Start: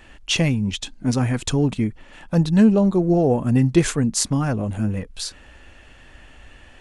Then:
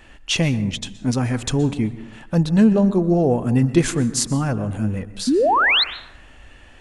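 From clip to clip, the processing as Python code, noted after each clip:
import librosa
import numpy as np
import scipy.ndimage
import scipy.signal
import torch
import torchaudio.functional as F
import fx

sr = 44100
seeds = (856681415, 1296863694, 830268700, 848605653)

y = fx.spec_paint(x, sr, seeds[0], shape='rise', start_s=5.27, length_s=0.57, low_hz=230.0, high_hz=4400.0, level_db=-16.0)
y = fx.rev_plate(y, sr, seeds[1], rt60_s=0.9, hf_ratio=0.45, predelay_ms=110, drr_db=14.0)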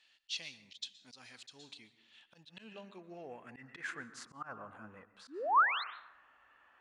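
y = fx.filter_sweep_bandpass(x, sr, from_hz=4200.0, to_hz=1200.0, start_s=1.91, end_s=4.55, q=3.3)
y = fx.auto_swell(y, sr, attack_ms=101.0)
y = y * 10.0 ** (-6.0 / 20.0)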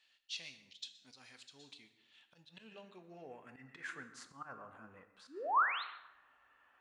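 y = fx.rev_double_slope(x, sr, seeds[2], early_s=0.56, late_s=1.6, knee_db=-25, drr_db=9.5)
y = y * 10.0 ** (-4.0 / 20.0)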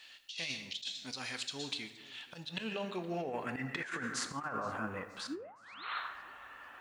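y = fx.over_compress(x, sr, threshold_db=-53.0, ratio=-1.0)
y = fx.echo_warbled(y, sr, ms=471, feedback_pct=45, rate_hz=2.8, cents=157, wet_db=-23.0)
y = y * 10.0 ** (10.0 / 20.0)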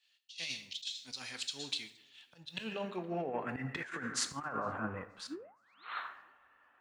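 y = fx.band_widen(x, sr, depth_pct=100)
y = y * 10.0 ** (-1.0 / 20.0)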